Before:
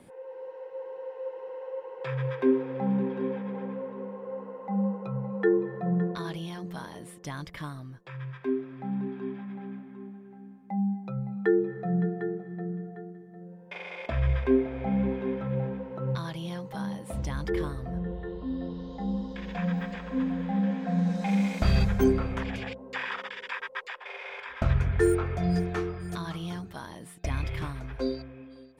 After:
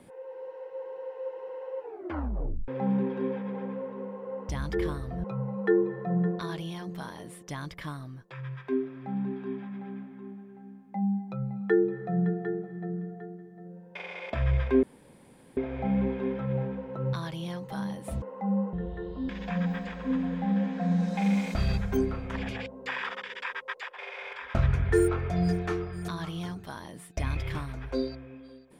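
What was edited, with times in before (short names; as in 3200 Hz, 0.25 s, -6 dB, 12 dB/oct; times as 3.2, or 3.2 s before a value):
1.79 tape stop 0.89 s
4.49–5 swap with 17.24–17.99
14.59 insert room tone 0.74 s
18.55–19.36 cut
21.61–22.41 gain -4.5 dB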